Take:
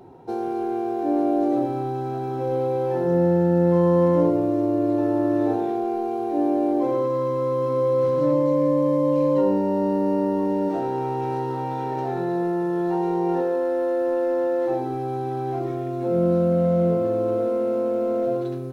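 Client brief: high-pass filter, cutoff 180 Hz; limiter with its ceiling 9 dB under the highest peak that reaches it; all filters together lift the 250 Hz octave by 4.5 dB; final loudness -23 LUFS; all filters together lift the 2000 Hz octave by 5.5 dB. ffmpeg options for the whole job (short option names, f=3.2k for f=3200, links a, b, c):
-af "highpass=180,equalizer=f=250:t=o:g=7.5,equalizer=f=2k:t=o:g=6.5,volume=-0.5dB,alimiter=limit=-15dB:level=0:latency=1"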